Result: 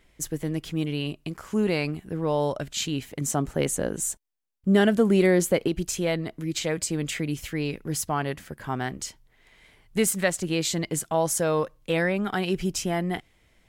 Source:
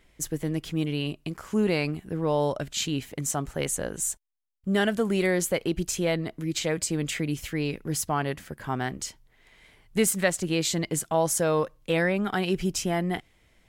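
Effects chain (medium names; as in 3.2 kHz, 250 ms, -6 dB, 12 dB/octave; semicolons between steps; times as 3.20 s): 3.21–5.68 s: peaking EQ 270 Hz +6.5 dB 2.4 oct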